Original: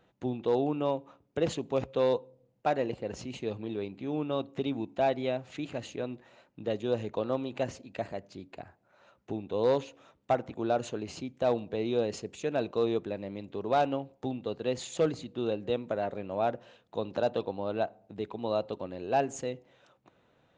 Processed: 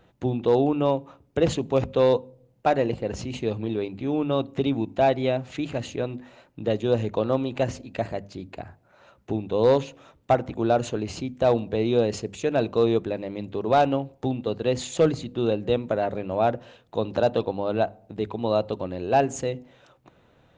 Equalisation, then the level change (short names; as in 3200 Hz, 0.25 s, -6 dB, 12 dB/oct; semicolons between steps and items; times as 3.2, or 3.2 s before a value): low shelf 110 Hz +11 dB; notches 50/100/150/200/250 Hz; +6.5 dB